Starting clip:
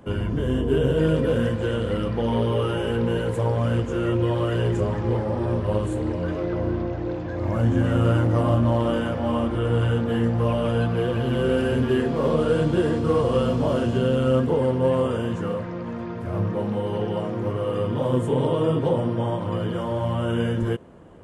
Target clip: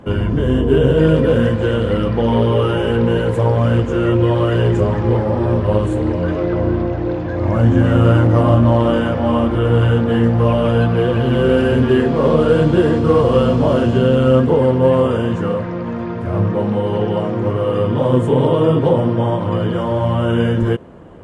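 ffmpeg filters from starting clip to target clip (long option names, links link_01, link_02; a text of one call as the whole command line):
ffmpeg -i in.wav -af "highshelf=frequency=6800:gain=-10.5,volume=8dB" out.wav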